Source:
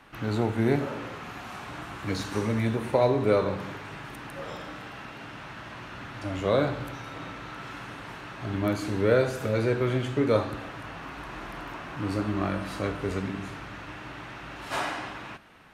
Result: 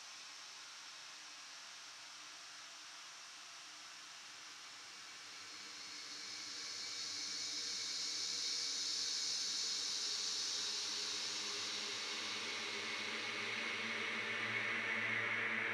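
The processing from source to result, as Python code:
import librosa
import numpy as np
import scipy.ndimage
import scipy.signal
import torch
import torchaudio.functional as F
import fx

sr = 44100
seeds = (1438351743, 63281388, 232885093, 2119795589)

y = fx.filter_sweep_bandpass(x, sr, from_hz=5500.0, to_hz=210.0, start_s=2.24, end_s=3.29, q=3.7)
y = fx.paulstretch(y, sr, seeds[0], factor=18.0, window_s=0.5, from_s=1.68)
y = y * librosa.db_to_amplitude(6.0)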